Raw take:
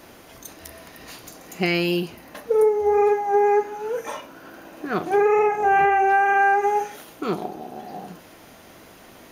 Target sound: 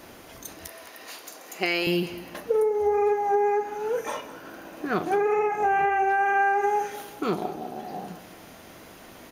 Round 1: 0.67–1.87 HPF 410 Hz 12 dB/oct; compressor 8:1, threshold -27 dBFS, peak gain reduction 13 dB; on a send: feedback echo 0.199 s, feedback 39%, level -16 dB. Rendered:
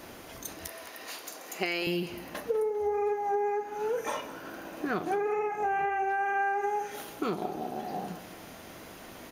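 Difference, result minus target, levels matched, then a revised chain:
compressor: peak gain reduction +6.5 dB
0.67–1.87 HPF 410 Hz 12 dB/oct; compressor 8:1, threshold -19.5 dBFS, peak gain reduction 6.5 dB; on a send: feedback echo 0.199 s, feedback 39%, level -16 dB

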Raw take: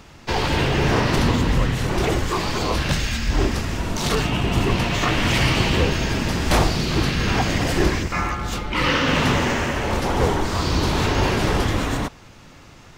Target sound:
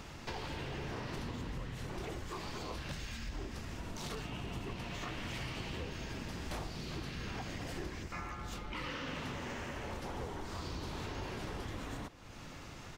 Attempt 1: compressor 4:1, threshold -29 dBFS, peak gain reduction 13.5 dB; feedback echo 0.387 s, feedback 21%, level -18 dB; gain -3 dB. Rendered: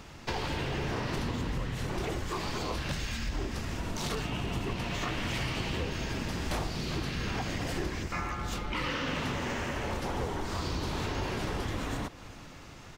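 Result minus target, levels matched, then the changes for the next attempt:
compressor: peak gain reduction -8 dB
change: compressor 4:1, threshold -40 dBFS, peak gain reduction 22 dB

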